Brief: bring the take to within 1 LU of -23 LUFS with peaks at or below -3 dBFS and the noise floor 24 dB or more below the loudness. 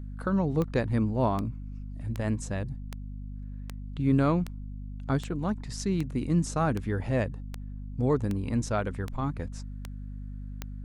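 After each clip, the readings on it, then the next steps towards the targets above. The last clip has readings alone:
clicks 14; hum 50 Hz; harmonics up to 250 Hz; hum level -36 dBFS; loudness -29.5 LUFS; peak -13.0 dBFS; loudness target -23.0 LUFS
-> de-click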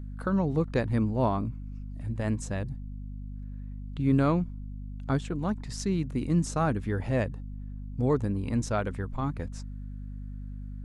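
clicks 0; hum 50 Hz; harmonics up to 250 Hz; hum level -36 dBFS
-> de-hum 50 Hz, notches 5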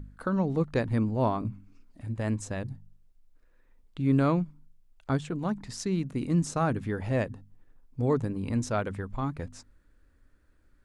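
hum none; loudness -30.0 LUFS; peak -13.0 dBFS; loudness target -23.0 LUFS
-> gain +7 dB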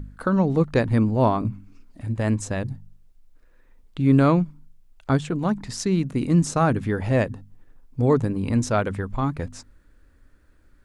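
loudness -23.0 LUFS; peak -6.0 dBFS; noise floor -56 dBFS

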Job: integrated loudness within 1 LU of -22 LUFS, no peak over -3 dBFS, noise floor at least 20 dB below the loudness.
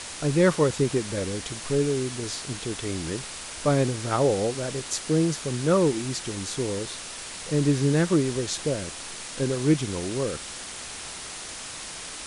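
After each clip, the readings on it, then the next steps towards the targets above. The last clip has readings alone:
noise floor -38 dBFS; noise floor target -47 dBFS; loudness -26.5 LUFS; peak -8.5 dBFS; loudness target -22.0 LUFS
-> denoiser 9 dB, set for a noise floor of -38 dBFS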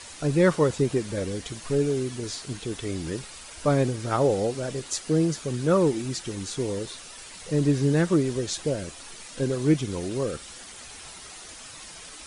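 noise floor -44 dBFS; noise floor target -46 dBFS
-> denoiser 6 dB, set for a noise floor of -44 dBFS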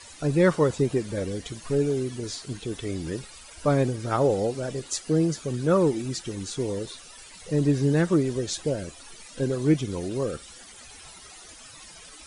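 noise floor -47 dBFS; loudness -26.0 LUFS; peak -8.5 dBFS; loudness target -22.0 LUFS
-> gain +4 dB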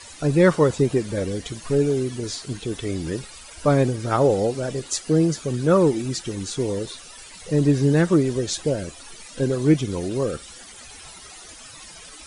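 loudness -22.0 LUFS; peak -4.5 dBFS; noise floor -43 dBFS

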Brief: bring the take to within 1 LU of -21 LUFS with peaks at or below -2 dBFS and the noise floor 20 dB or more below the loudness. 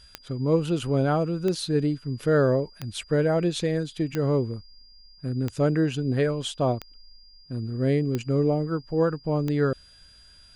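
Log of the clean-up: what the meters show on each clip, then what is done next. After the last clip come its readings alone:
clicks 8; steady tone 4800 Hz; tone level -52 dBFS; loudness -25.5 LUFS; peak -11.0 dBFS; loudness target -21.0 LUFS
-> de-click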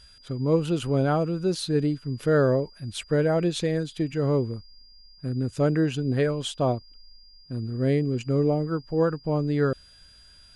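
clicks 0; steady tone 4800 Hz; tone level -52 dBFS
-> notch 4800 Hz, Q 30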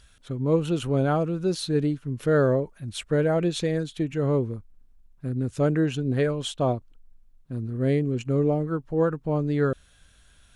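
steady tone none; loudness -25.5 LUFS; peak -11.0 dBFS; loudness target -21.0 LUFS
-> gain +4.5 dB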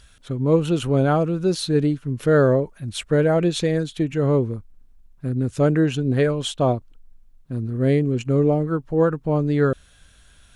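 loudness -21.0 LUFS; peak -6.5 dBFS; noise floor -53 dBFS

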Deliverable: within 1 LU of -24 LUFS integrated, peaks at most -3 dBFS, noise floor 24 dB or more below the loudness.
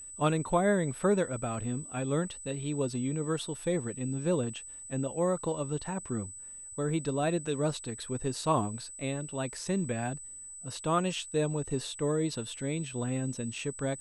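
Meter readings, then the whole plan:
steady tone 8000 Hz; tone level -43 dBFS; loudness -32.5 LUFS; peak -14.5 dBFS; loudness target -24.0 LUFS
-> notch 8000 Hz, Q 30; gain +8.5 dB

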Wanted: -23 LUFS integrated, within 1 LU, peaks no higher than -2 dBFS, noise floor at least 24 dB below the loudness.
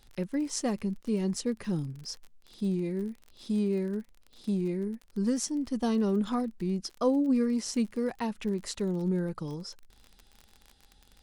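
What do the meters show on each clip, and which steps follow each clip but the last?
ticks 38/s; loudness -31.0 LUFS; peak -15.0 dBFS; loudness target -23.0 LUFS
-> de-click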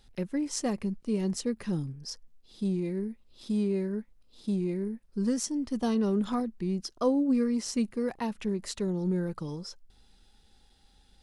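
ticks 0/s; loudness -31.0 LUFS; peak -15.0 dBFS; loudness target -23.0 LUFS
-> gain +8 dB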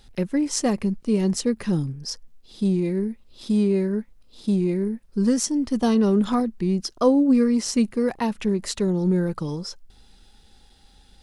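loudness -23.0 LUFS; peak -7.0 dBFS; noise floor -55 dBFS

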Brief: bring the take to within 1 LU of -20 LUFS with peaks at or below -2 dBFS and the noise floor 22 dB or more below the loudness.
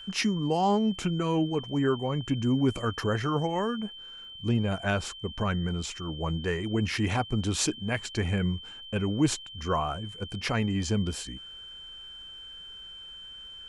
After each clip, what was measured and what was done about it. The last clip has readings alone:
ticks 23/s; steady tone 3100 Hz; tone level -42 dBFS; loudness -29.0 LUFS; peak -13.0 dBFS; loudness target -20.0 LUFS
-> de-click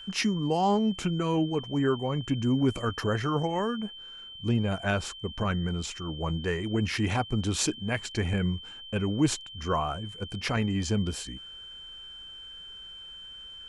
ticks 0.073/s; steady tone 3100 Hz; tone level -42 dBFS
-> notch 3100 Hz, Q 30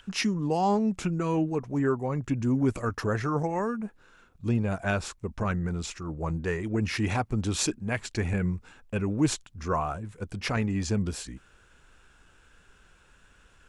steady tone none; loudness -29.0 LUFS; peak -13.5 dBFS; loudness target -20.0 LUFS
-> gain +9 dB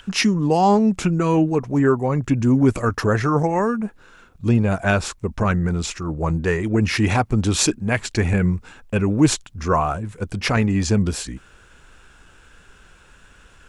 loudness -20.0 LUFS; peak -4.5 dBFS; noise floor -51 dBFS

